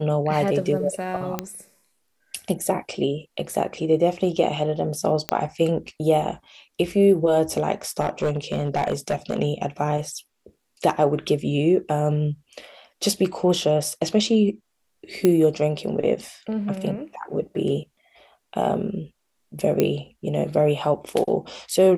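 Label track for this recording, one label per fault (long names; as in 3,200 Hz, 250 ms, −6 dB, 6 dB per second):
1.390000	1.390000	click −10 dBFS
5.290000	5.290000	click −6 dBFS
8.000000	9.400000	clipping −17.5 dBFS
15.250000	15.250000	click −6 dBFS
19.800000	19.800000	click −6 dBFS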